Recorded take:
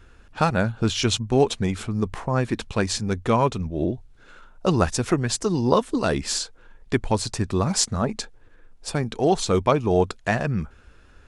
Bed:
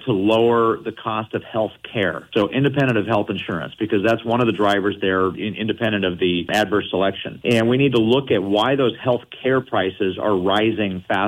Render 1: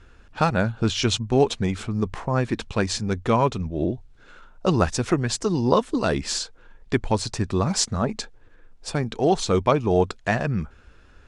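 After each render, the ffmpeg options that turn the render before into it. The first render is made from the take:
-af "lowpass=8100"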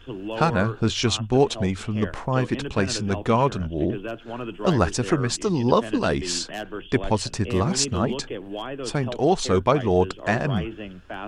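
-filter_complex "[1:a]volume=0.178[s0];[0:a][s0]amix=inputs=2:normalize=0"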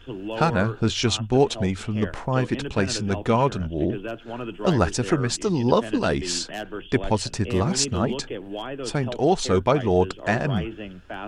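-af "bandreject=f=1100:w=14"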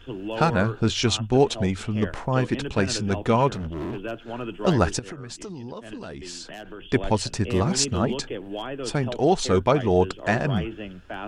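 -filter_complex "[0:a]asettb=1/sr,asplit=3[s0][s1][s2];[s0]atrim=end=3.544[s3];[s1]atrim=start=3.54:end=4.03,asetpts=PTS-STARTPTS,afade=t=in:d=0.004:c=qsin,afade=t=out:st=0.486:d=0.004:c=qsin,volume=25.1,asoftclip=hard,volume=0.0398[s4];[s2]atrim=start=4.026[s5];[s3][s4]acrossfade=d=0.004:c1=hsin:c2=qsin[s6];[s6][s5]acrossfade=d=0.004:c1=qsin:c2=hsin,asettb=1/sr,asplit=3[s7][s8][s9];[s7]atrim=end=4.994[s10];[s8]atrim=start=4.99:end=6.9,asetpts=PTS-STARTPTS,afade=t=in:d=0.004:c=qsin,afade=t=out:st=1.906:d=0.004:c=qsin,acompressor=threshold=0.02:ratio=6:attack=3.2:release=140:knee=1:detection=peak[s11];[s9]atrim=start=6.896[s12];[s10][s11]acrossfade=d=0.004:c1=hsin:c2=qsin[s13];[s13][s12]acrossfade=d=0.004:c1=qsin:c2=hsin"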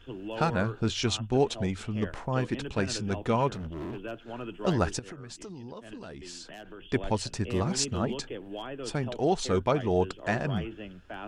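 -af "volume=0.501"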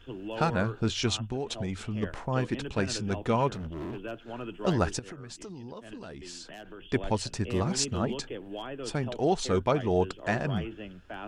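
-filter_complex "[0:a]asettb=1/sr,asplit=3[s0][s1][s2];[s0]atrim=end=1.154[s3];[s1]atrim=start=1.15:end=2.03,asetpts=PTS-STARTPTS,afade=t=in:d=0.004:c=qsin,afade=t=out:st=0.876:d=0.004:c=qsin,acompressor=threshold=0.0447:ratio=12:attack=3.2:release=140:knee=1:detection=peak[s4];[s2]atrim=start=2.026[s5];[s3][s4]acrossfade=d=0.004:c1=hsin:c2=qsin[s6];[s6][s5]acrossfade=d=0.004:c1=qsin:c2=hsin"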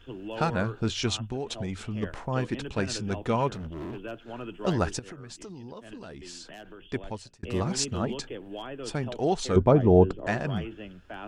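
-filter_complex "[0:a]asettb=1/sr,asplit=3[s0][s1][s2];[s0]atrim=end=9.564[s3];[s1]atrim=start=9.56:end=10.27,asetpts=PTS-STARTPTS,afade=t=in:d=0.004:c=qsin,afade=t=out:st=0.706:d=0.004:c=qsin,tiltshelf=f=1200:g=10[s4];[s2]atrim=start=10.266[s5];[s3][s4]acrossfade=d=0.004:c1=hsin:c2=qsin[s6];[s6][s5]acrossfade=d=0.004:c1=qsin:c2=hsin,asplit=2[s7][s8];[s7]atrim=end=7.43,asetpts=PTS-STARTPTS,afade=t=out:st=6.64:d=0.79[s9];[s8]atrim=start=7.43,asetpts=PTS-STARTPTS,afade=t=in:d=0.004:c=hsin[s10];[s9][s10]concat=n=2:v=0:a=1"

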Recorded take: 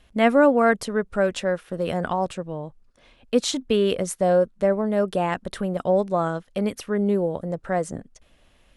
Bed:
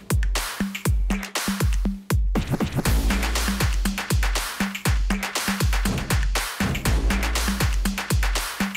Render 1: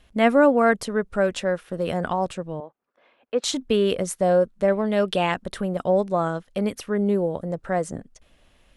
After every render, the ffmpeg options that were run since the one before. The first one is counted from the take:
-filter_complex "[0:a]asettb=1/sr,asplit=3[s0][s1][s2];[s0]atrim=end=2.604[s3];[s1]atrim=start=2.6:end=3.44,asetpts=PTS-STARTPTS,afade=t=in:d=0.004:c=qsin,afade=t=out:st=0.836:d=0.004:c=qsin,highpass=430,lowpass=2000[s4];[s2]atrim=start=3.436[s5];[s3][s4]acrossfade=d=0.004:c1=hsin:c2=qsin[s6];[s6][s5]acrossfade=d=0.004:c1=qsin:c2=hsin,asettb=1/sr,asplit=3[s7][s8][s9];[s7]atrim=end=4.684[s10];[s8]atrim=start=4.68:end=5.32,asetpts=PTS-STARTPTS,afade=t=in:d=0.004:c=qsin,afade=t=out:st=0.636:d=0.004:c=qsin,equalizer=f=3200:w=0.98:g=12[s11];[s9]atrim=start=5.316[s12];[s10][s11]acrossfade=d=0.004:c1=hsin:c2=qsin[s13];[s13][s12]acrossfade=d=0.004:c1=qsin:c2=hsin"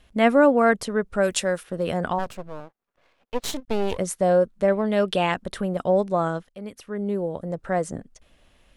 -filter_complex "[0:a]asplit=3[s0][s1][s2];[s0]afade=t=out:st=1.22:d=0.02[s3];[s1]aemphasis=mode=production:type=75fm,afade=t=in:st=1.22:d=0.02,afade=t=out:st=1.62:d=0.02[s4];[s2]afade=t=in:st=1.62:d=0.02[s5];[s3][s4][s5]amix=inputs=3:normalize=0,asplit=3[s6][s7][s8];[s6]afade=t=out:st=2.18:d=0.02[s9];[s7]aeval=exprs='max(val(0),0)':c=same,afade=t=in:st=2.18:d=0.02,afade=t=out:st=3.97:d=0.02[s10];[s8]afade=t=in:st=3.97:d=0.02[s11];[s9][s10][s11]amix=inputs=3:normalize=0,asplit=2[s12][s13];[s12]atrim=end=6.49,asetpts=PTS-STARTPTS,afade=t=out:st=6.486:d=0.004:c=hsin:silence=0.158489[s14];[s13]atrim=start=6.49,asetpts=PTS-STARTPTS,afade=t=in:d=1.23:silence=0.158489[s15];[s14][s15]concat=n=2:v=0:a=1"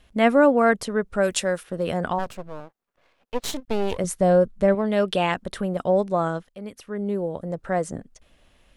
-filter_complex "[0:a]asettb=1/sr,asplit=3[s0][s1][s2];[s0]atrim=end=4.044[s3];[s1]atrim=start=4.04:end=4.75,asetpts=PTS-STARTPTS,afade=t=in:d=0.004:c=qsin,afade=t=out:st=0.706:d=0.004:c=qsin,lowshelf=f=150:g=11.5[s4];[s2]atrim=start=4.746[s5];[s3][s4]acrossfade=d=0.004:c1=hsin:c2=qsin[s6];[s6][s5]acrossfade=d=0.004:c1=qsin:c2=hsin"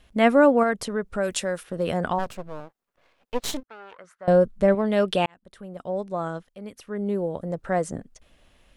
-filter_complex "[0:a]asettb=1/sr,asplit=3[s0][s1][s2];[s0]atrim=end=0.634[s3];[s1]atrim=start=0.63:end=1.76,asetpts=PTS-STARTPTS,afade=t=in:d=0.004:c=qsin,afade=t=out:st=1.126:d=0.004:c=qsin,acompressor=threshold=0.0447:ratio=1.5:attack=3.2:release=140:knee=1:detection=peak[s4];[s2]atrim=start=1.756[s5];[s3][s4]acrossfade=d=0.004:c1=hsin:c2=qsin[s6];[s6][s5]acrossfade=d=0.004:c1=qsin:c2=hsin,asettb=1/sr,asplit=3[s7][s8][s9];[s7]atrim=end=3.634[s10];[s8]atrim=start=3.63:end=4.28,asetpts=PTS-STARTPTS,afade=t=in:d=0.004:c=qsin,afade=t=out:st=0.646:d=0.004:c=qsin,bandpass=f=1400:t=q:w=4.5[s11];[s9]atrim=start=4.276[s12];[s10][s11]acrossfade=d=0.004:c1=hsin:c2=qsin[s13];[s13][s12]acrossfade=d=0.004:c1=qsin:c2=hsin,asplit=2[s14][s15];[s14]atrim=end=5.26,asetpts=PTS-STARTPTS,afade=t=out:st=5.256:d=0.004:c=hsin[s16];[s15]atrim=start=5.26,asetpts=PTS-STARTPTS,afade=t=in:d=1.82[s17];[s16][s17]concat=n=2:v=0:a=1"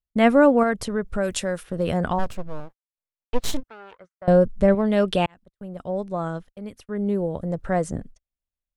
-af "agate=range=0.00708:threshold=0.00562:ratio=16:detection=peak,lowshelf=f=130:g=12"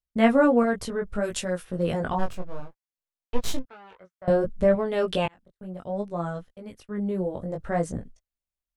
-af "flanger=delay=16.5:depth=5.3:speed=0.62"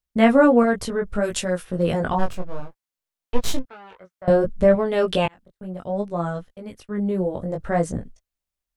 -af "volume=1.68,alimiter=limit=0.794:level=0:latency=1"

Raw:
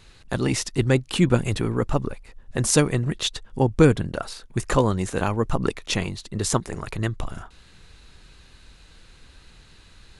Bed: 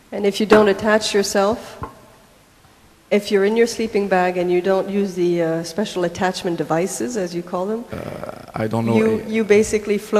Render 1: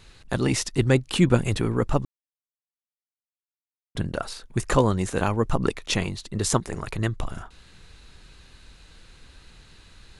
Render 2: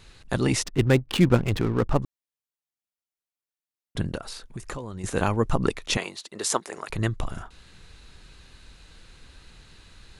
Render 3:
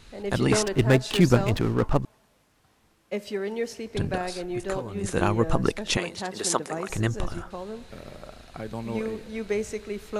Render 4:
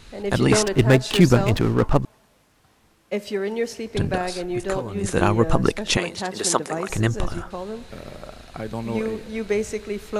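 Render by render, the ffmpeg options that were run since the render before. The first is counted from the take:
-filter_complex "[0:a]asplit=3[s0][s1][s2];[s0]atrim=end=2.05,asetpts=PTS-STARTPTS,afade=t=out:st=2.046:d=0.004:c=hsin[s3];[s1]atrim=start=2.05:end=3.95,asetpts=PTS-STARTPTS,volume=0[s4];[s2]atrim=start=3.95,asetpts=PTS-STARTPTS,afade=t=in:d=0.004:c=hsin[s5];[s3][s4][s5]concat=n=3:v=0:a=1"
-filter_complex "[0:a]asplit=3[s0][s1][s2];[s0]afade=t=out:st=0.62:d=0.02[s3];[s1]adynamicsmooth=sensitivity=6.5:basefreq=580,afade=t=in:st=0.62:d=0.02,afade=t=out:st=2.01:d=0.02[s4];[s2]afade=t=in:st=2.01:d=0.02[s5];[s3][s4][s5]amix=inputs=3:normalize=0,asettb=1/sr,asplit=3[s6][s7][s8];[s6]atrim=end=4.174[s9];[s7]atrim=start=4.17:end=5.04,asetpts=PTS-STARTPTS,afade=t=in:d=0.004:c=qsin,afade=t=out:st=0.866:d=0.004:c=qsin,acompressor=threshold=0.0251:ratio=6:attack=3.2:release=140:knee=1:detection=peak[s10];[s8]atrim=start=5.036[s11];[s9][s10]acrossfade=d=0.004:c1=hsin:c2=qsin[s12];[s12][s11]acrossfade=d=0.004:c1=qsin:c2=hsin,asettb=1/sr,asplit=3[s13][s14][s15];[s13]atrim=end=5.974[s16];[s14]atrim=start=5.97:end=6.9,asetpts=PTS-STARTPTS,afade=t=in:d=0.004:c=qsin,afade=t=out:st=0.926:d=0.004:c=qsin,highpass=430[s17];[s15]atrim=start=6.896[s18];[s16][s17]acrossfade=d=0.004:c1=hsin:c2=qsin[s19];[s19][s18]acrossfade=d=0.004:c1=qsin:c2=hsin"
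-filter_complex "[1:a]volume=0.2[s0];[0:a][s0]amix=inputs=2:normalize=0"
-af "volume=1.68,alimiter=limit=0.708:level=0:latency=1"

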